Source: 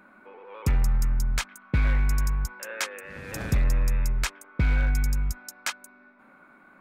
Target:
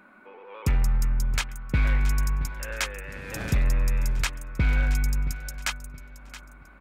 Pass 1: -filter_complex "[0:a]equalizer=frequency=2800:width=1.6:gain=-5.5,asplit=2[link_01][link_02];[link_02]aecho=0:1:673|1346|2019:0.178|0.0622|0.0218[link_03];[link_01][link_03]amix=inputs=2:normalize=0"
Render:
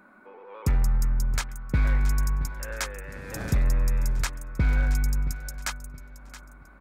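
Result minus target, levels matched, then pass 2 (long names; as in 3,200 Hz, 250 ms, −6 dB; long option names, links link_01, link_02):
2,000 Hz band −3.0 dB
-filter_complex "[0:a]equalizer=frequency=2800:width=1.6:gain=3,asplit=2[link_01][link_02];[link_02]aecho=0:1:673|1346|2019:0.178|0.0622|0.0218[link_03];[link_01][link_03]amix=inputs=2:normalize=0"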